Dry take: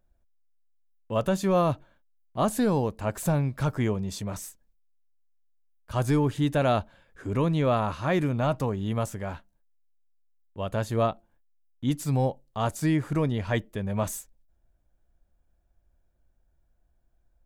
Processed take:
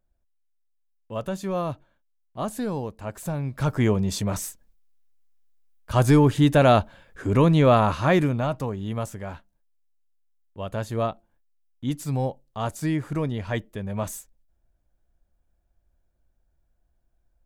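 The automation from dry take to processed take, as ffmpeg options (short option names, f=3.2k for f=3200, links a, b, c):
-af "volume=7dB,afade=t=in:st=3.37:d=0.64:silence=0.266073,afade=t=out:st=8.01:d=0.48:silence=0.398107"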